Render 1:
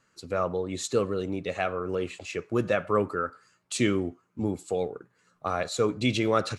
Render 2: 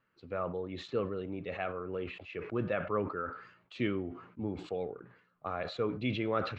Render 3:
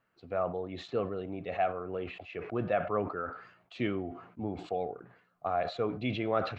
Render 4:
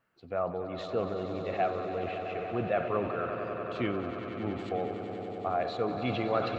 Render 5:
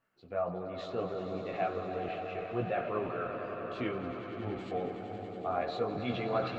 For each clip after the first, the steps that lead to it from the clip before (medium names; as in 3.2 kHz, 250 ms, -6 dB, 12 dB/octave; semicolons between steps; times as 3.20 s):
low-pass 3.2 kHz 24 dB/octave; decay stretcher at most 88 dB/s; trim -8 dB
peaking EQ 710 Hz +13 dB 0.3 oct
echo with a slow build-up 94 ms, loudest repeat 5, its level -12 dB
chorus voices 4, 0.65 Hz, delay 19 ms, depth 3.9 ms